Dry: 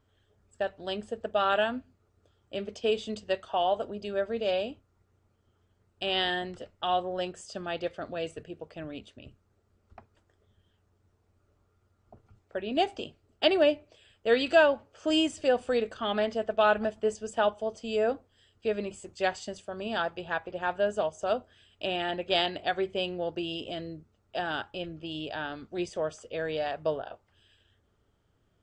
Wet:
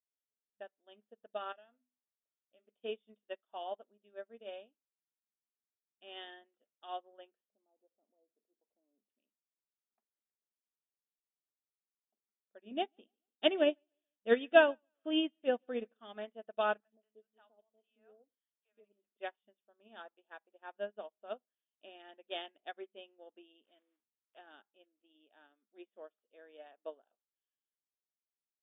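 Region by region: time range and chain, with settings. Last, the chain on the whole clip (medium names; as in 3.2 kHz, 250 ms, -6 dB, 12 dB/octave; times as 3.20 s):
1.52–2.66 s: hum notches 50/100/150/200/250/300/350/400 Hz + comb 1.5 ms, depth 34% + compression 3:1, threshold -33 dBFS
7.48–9.10 s: Chebyshev band-stop 930–5700 Hz, order 3 + compression 2:1, threshold -41 dBFS
12.65–16.00 s: tone controls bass +11 dB, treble +4 dB + feedback delay 145 ms, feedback 41%, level -20 dB
16.80–19.17 s: compression 1.5:1, threshold -41 dBFS + three bands offset in time highs, lows, mids 70/120 ms, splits 170/680 Hz
23.64–24.41 s: block-companded coder 3-bit + bass shelf 390 Hz -5 dB + tape noise reduction on one side only encoder only
whole clip: FFT band-pass 200–3700 Hz; upward expansion 2.5:1, over -41 dBFS; trim -1 dB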